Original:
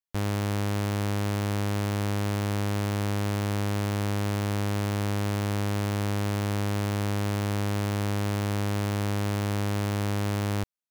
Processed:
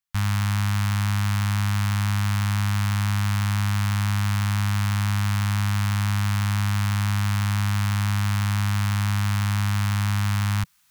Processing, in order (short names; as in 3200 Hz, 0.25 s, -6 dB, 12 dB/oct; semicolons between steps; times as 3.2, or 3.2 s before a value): Chebyshev band-stop 160–1100 Hz, order 2; reverse; upward compressor, threshold -49 dBFS; reverse; gain +6.5 dB